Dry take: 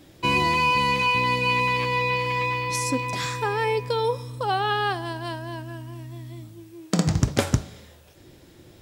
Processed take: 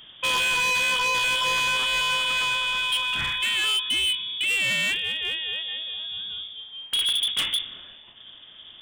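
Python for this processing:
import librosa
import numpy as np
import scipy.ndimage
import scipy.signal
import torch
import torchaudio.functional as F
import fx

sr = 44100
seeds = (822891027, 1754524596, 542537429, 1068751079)

y = fx.freq_invert(x, sr, carrier_hz=3500)
y = 10.0 ** (-11.0 / 20.0) * np.tanh(y / 10.0 ** (-11.0 / 20.0))
y = fx.dynamic_eq(y, sr, hz=570.0, q=0.74, threshold_db=-42.0, ratio=4.0, max_db=-5)
y = np.clip(y, -10.0 ** (-24.5 / 20.0), 10.0 ** (-24.5 / 20.0))
y = F.gain(torch.from_numpy(y), 3.5).numpy()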